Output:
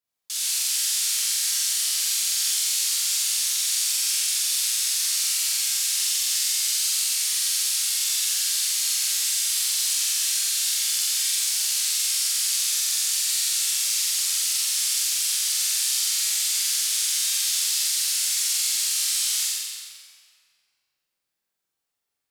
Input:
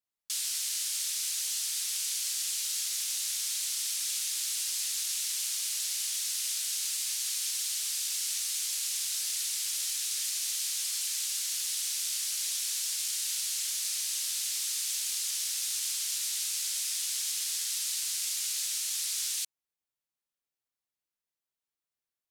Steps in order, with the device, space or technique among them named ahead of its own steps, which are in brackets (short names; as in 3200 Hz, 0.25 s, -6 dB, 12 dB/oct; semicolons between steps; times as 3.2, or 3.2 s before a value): tunnel (flutter echo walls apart 7.8 m, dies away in 0.93 s; reverb RT60 2.2 s, pre-delay 15 ms, DRR -3.5 dB); gain +1.5 dB